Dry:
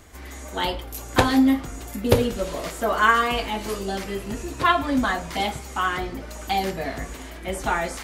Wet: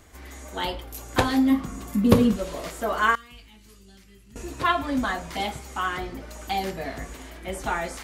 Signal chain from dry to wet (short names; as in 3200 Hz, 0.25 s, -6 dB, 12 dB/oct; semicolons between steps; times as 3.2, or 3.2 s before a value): 1.5–2.35 small resonant body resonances 200/1100 Hz, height 12 dB -> 16 dB; 3.15–4.36 passive tone stack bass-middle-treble 6-0-2; gain -3.5 dB